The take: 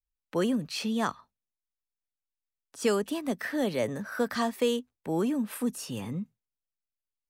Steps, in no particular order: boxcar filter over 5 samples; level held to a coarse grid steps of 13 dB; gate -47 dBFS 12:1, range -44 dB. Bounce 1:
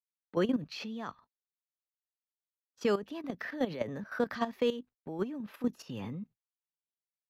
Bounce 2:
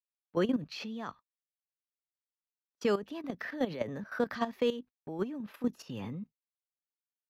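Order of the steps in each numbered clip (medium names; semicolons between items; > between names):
gate > level held to a coarse grid > boxcar filter; level held to a coarse grid > gate > boxcar filter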